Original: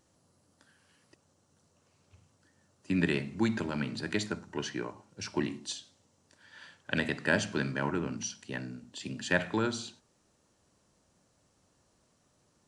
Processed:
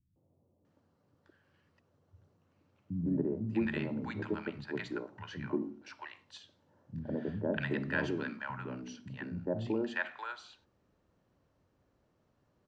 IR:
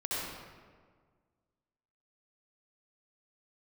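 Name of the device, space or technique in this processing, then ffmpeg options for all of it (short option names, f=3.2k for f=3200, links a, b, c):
phone in a pocket: -filter_complex "[0:a]lowpass=3.8k,highshelf=f=2.1k:g=-11,acrossover=split=190|800[a][b][c];[b]adelay=160[d];[c]adelay=650[e];[a][d][e]amix=inputs=3:normalize=0"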